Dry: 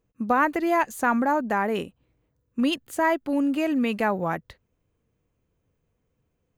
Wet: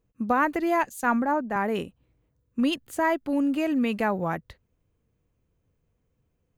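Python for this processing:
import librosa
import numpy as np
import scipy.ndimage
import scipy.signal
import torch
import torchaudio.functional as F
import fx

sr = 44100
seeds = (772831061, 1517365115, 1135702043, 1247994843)

y = fx.low_shelf(x, sr, hz=160.0, db=5.0)
y = fx.band_widen(y, sr, depth_pct=100, at=(0.89, 1.56))
y = y * 10.0 ** (-2.0 / 20.0)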